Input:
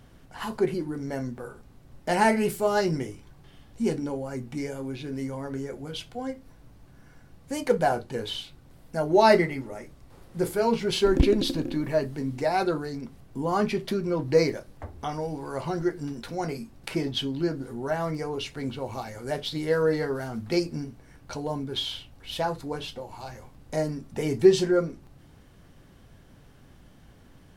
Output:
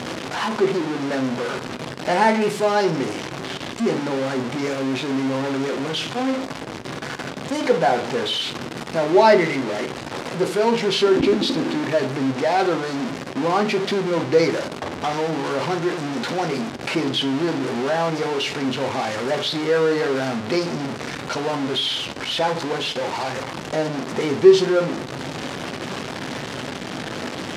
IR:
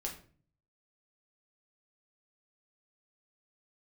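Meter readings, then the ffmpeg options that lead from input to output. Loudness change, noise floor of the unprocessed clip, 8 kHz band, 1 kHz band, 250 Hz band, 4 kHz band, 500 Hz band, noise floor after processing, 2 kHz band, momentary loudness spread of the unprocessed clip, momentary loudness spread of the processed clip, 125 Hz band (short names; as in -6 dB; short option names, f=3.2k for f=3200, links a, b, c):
+5.5 dB, -53 dBFS, +7.0 dB, +7.0 dB, +6.0 dB, +9.5 dB, +6.0 dB, -32 dBFS, +8.5 dB, 15 LU, 12 LU, +2.5 dB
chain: -filter_complex "[0:a]aeval=exprs='val(0)+0.5*0.075*sgn(val(0))':c=same,highpass=210,lowpass=5.3k,asplit=2[a][b];[1:a]atrim=start_sample=2205,asetrate=33075,aresample=44100[c];[b][c]afir=irnorm=-1:irlink=0,volume=-8dB[d];[a][d]amix=inputs=2:normalize=0"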